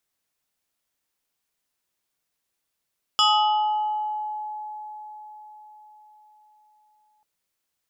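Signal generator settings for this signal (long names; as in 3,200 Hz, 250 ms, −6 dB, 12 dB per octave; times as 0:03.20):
two-operator FM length 4.04 s, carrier 850 Hz, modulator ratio 2.48, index 2.1, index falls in 1.48 s exponential, decay 4.98 s, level −14.5 dB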